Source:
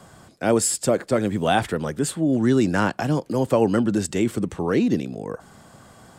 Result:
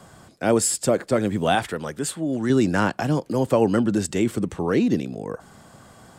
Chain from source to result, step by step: 1.55–2.50 s: bass shelf 480 Hz -6.5 dB

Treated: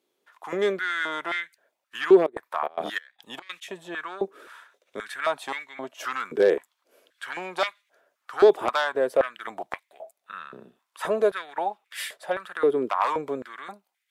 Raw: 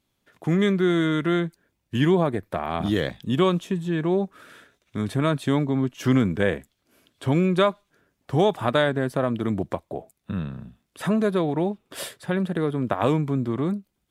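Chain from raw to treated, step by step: Chebyshev shaper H 5 -10 dB, 7 -19 dB, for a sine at -6 dBFS; 2.20–3.61 s: trance gate ".xx..xx.x.xxx" 146 bpm -24 dB; step-sequenced high-pass 3.8 Hz 400–2000 Hz; trim -7.5 dB

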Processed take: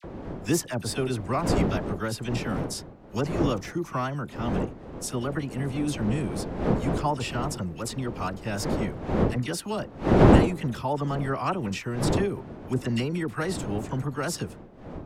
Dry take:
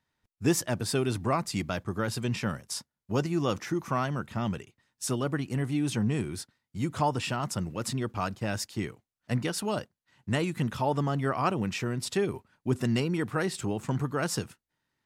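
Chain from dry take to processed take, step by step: wind noise 400 Hz -29 dBFS; phase dispersion lows, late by 41 ms, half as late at 1.5 kHz

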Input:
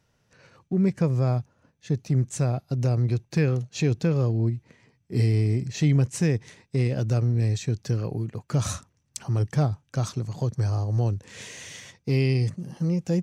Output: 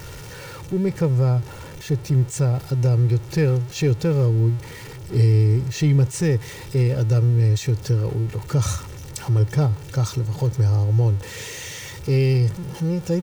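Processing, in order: jump at every zero crossing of -34.5 dBFS; bass shelf 250 Hz +5 dB; comb 2.2 ms, depth 59%

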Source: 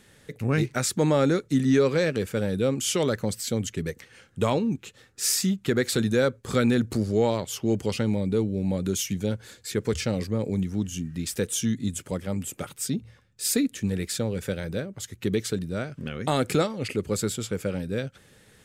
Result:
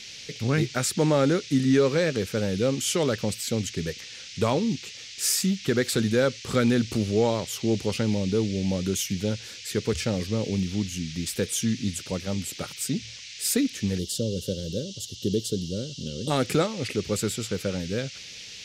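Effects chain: band noise 2.1–6.3 kHz -42 dBFS; time-frequency box 13.99–16.31 s, 590–2700 Hz -21 dB

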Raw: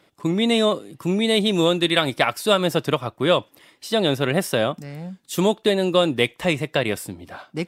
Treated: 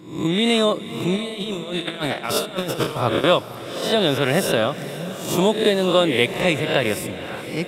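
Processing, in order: reverse spectral sustain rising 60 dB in 0.58 s; 1.16–3.24 s: compressor with a negative ratio -24 dBFS, ratio -0.5; echo that smears into a reverb 500 ms, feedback 58%, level -14 dB

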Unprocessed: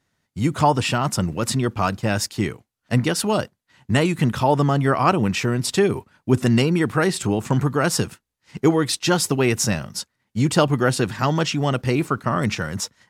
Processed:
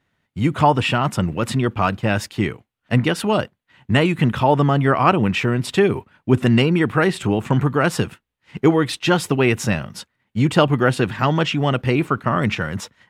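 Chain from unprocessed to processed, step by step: resonant high shelf 4 kHz -8 dB, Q 1.5; trim +2 dB

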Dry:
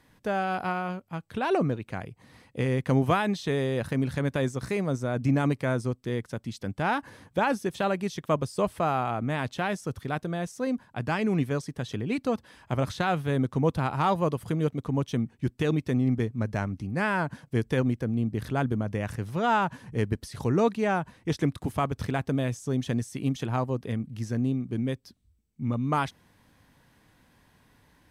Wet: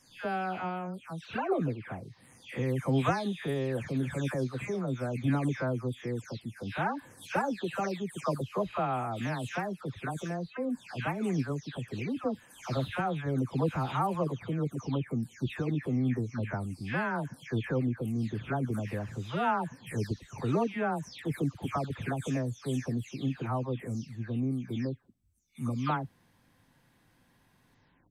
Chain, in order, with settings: delay that grows with frequency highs early, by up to 365 ms; trim -4 dB

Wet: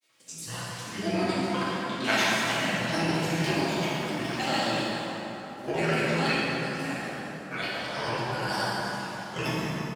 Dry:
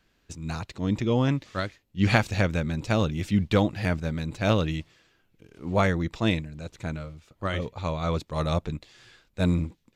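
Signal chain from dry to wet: spectrogram pixelated in time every 50 ms; high-pass 140 Hz 12 dB/octave; tilt EQ +3 dB/octave; comb 4.4 ms, depth 60%; in parallel at -1.5 dB: compression, threshold -36 dBFS, peak gain reduction 19 dB; on the sum: flange 1.4 Hz, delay 0.9 ms, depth 8.6 ms, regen +71%; granulator 100 ms, spray 100 ms, pitch spread up and down by 7 st; plate-style reverb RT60 4 s, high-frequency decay 0.55×, DRR -9 dB; trim -4 dB

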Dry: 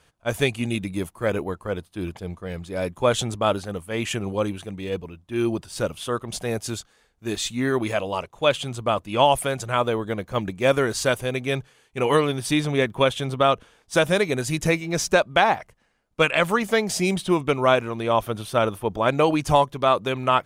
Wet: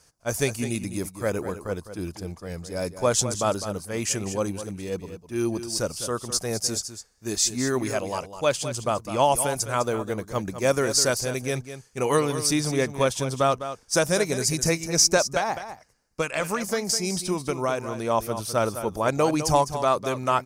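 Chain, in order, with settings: resonant high shelf 4.2 kHz +7.5 dB, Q 3; 15.30–17.97 s: compression 4:1, threshold -20 dBFS, peak gain reduction 7 dB; delay 205 ms -11 dB; trim -2.5 dB

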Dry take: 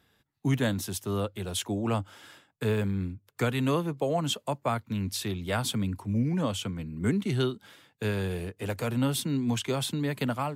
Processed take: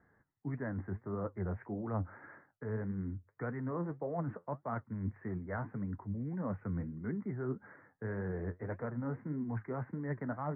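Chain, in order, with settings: steep low-pass 2 kHz 96 dB/octave; reverse; compression, threshold -35 dBFS, peak gain reduction 13 dB; reverse; flange 1.7 Hz, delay 3.8 ms, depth 8.1 ms, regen +63%; trim +4 dB

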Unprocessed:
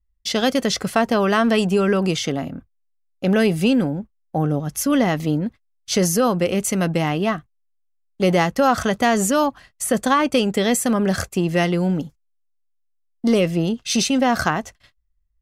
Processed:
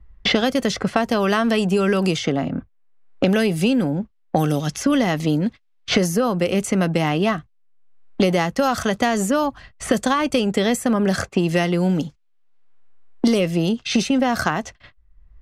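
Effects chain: level-controlled noise filter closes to 1.6 kHz, open at -15.5 dBFS; three bands compressed up and down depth 100%; trim -1 dB

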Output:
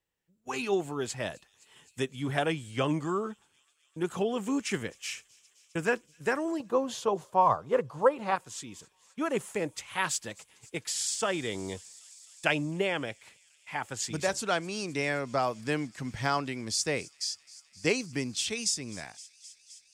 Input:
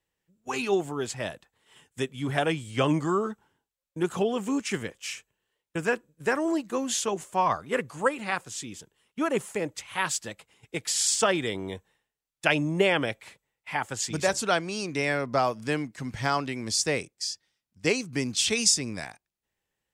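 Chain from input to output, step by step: 6.60–8.36 s: graphic EQ 125/500/1000/2000/4000/8000 Hz +12/+10/+10/-4/+3/-7 dB; feedback echo behind a high-pass 260 ms, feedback 84%, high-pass 4.5 kHz, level -20.5 dB; gain riding within 4 dB 0.5 s; trim -5.5 dB

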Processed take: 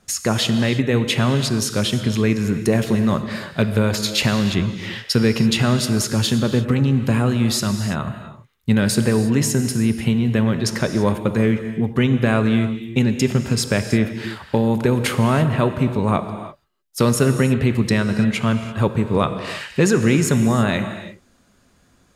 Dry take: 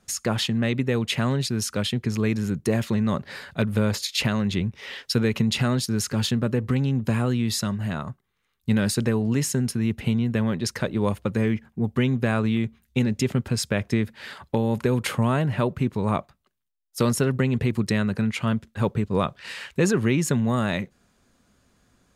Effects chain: gated-style reverb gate 360 ms flat, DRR 8 dB; trim +5 dB

